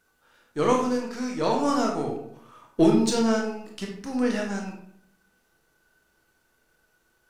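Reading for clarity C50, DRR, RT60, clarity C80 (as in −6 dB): 4.5 dB, 0.0 dB, 0.70 s, 8.5 dB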